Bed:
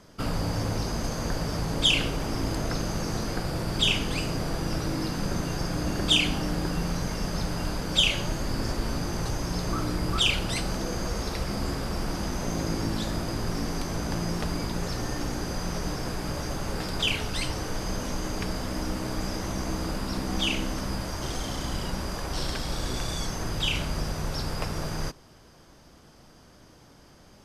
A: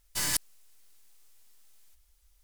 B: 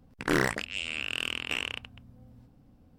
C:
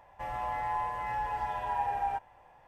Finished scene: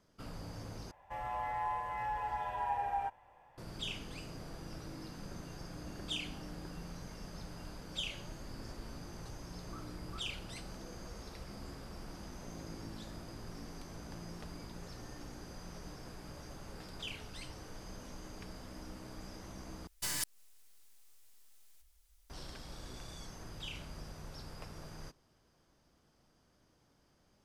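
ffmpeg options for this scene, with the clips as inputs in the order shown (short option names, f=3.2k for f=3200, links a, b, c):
-filter_complex "[0:a]volume=-17.5dB[a];[1:a]acompressor=threshold=-37dB:ratio=2:attack=55:release=220:knee=1:detection=rms[b];[a]asplit=3[c][d][e];[c]atrim=end=0.914[f];[3:a]atrim=end=2.67,asetpts=PTS-STARTPTS,volume=-4dB[g];[d]atrim=start=3.576:end=19.874[h];[b]atrim=end=2.43,asetpts=PTS-STARTPTS,volume=-2.5dB[i];[e]atrim=start=22.296[j];[f][g]acrossfade=d=0.004:c1=hsin:c2=hsin[k];[k][h]acrossfade=d=0.004:c1=hsin:c2=hsin[l];[l][i]acrossfade=d=0.004:c1=hsin:c2=hsin[m];[m][j]acrossfade=d=0.004:c1=hsin:c2=hsin"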